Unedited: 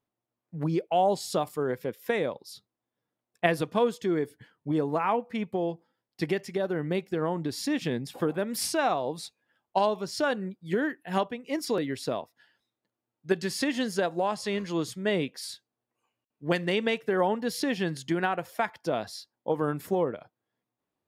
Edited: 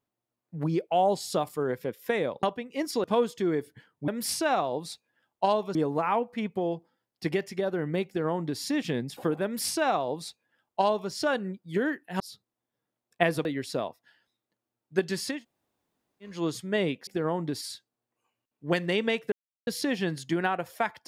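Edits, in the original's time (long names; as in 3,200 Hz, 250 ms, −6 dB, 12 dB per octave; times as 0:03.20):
0:02.43–0:03.68: swap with 0:11.17–0:11.78
0:07.04–0:07.58: duplicate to 0:15.40
0:08.41–0:10.08: duplicate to 0:04.72
0:13.66–0:14.65: fill with room tone, crossfade 0.24 s
0:17.11–0:17.46: silence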